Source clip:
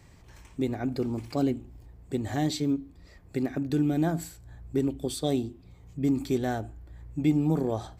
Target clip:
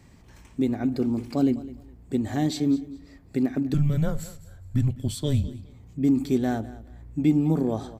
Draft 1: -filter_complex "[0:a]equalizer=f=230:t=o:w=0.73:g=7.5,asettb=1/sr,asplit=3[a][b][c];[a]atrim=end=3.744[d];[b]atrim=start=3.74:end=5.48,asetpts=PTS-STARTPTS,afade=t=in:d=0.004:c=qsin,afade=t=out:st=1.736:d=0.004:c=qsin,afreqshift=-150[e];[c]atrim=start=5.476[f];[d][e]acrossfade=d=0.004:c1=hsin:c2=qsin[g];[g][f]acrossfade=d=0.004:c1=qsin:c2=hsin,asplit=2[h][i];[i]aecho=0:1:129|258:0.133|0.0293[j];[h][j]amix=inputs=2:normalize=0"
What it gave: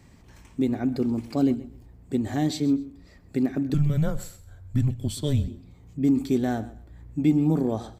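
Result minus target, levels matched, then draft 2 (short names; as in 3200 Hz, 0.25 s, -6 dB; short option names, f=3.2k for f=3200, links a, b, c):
echo 78 ms early
-filter_complex "[0:a]equalizer=f=230:t=o:w=0.73:g=7.5,asettb=1/sr,asplit=3[a][b][c];[a]atrim=end=3.744[d];[b]atrim=start=3.74:end=5.48,asetpts=PTS-STARTPTS,afade=t=in:d=0.004:c=qsin,afade=t=out:st=1.736:d=0.004:c=qsin,afreqshift=-150[e];[c]atrim=start=5.476[f];[d][e]acrossfade=d=0.004:c1=hsin:c2=qsin[g];[g][f]acrossfade=d=0.004:c1=qsin:c2=hsin,asplit=2[h][i];[i]aecho=0:1:207|414:0.133|0.0293[j];[h][j]amix=inputs=2:normalize=0"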